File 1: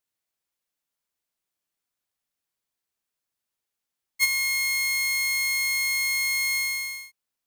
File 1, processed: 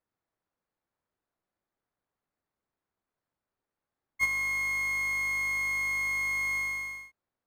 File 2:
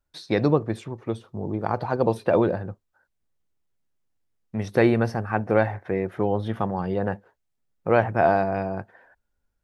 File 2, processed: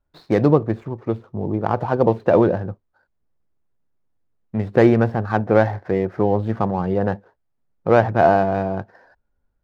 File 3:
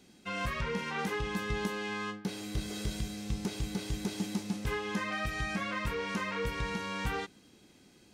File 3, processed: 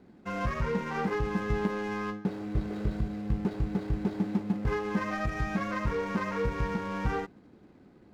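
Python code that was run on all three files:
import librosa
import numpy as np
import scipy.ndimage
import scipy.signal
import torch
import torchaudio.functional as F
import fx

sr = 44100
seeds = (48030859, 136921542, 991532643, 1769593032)

y = scipy.signal.medfilt(x, 15)
y = fx.lowpass(y, sr, hz=2300.0, slope=6)
y = y * librosa.db_to_amplitude(5.5)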